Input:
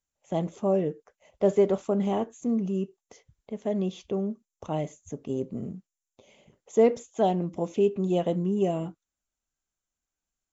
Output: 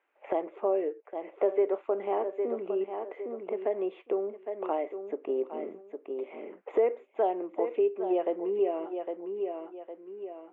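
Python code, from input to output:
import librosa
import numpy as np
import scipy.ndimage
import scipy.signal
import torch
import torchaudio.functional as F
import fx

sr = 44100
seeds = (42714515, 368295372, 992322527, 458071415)

y = scipy.signal.sosfilt(scipy.signal.ellip(3, 1.0, 40, [350.0, 2400.0], 'bandpass', fs=sr, output='sos'), x)
y = fx.echo_feedback(y, sr, ms=808, feedback_pct=16, wet_db=-12.5)
y = fx.band_squash(y, sr, depth_pct=70)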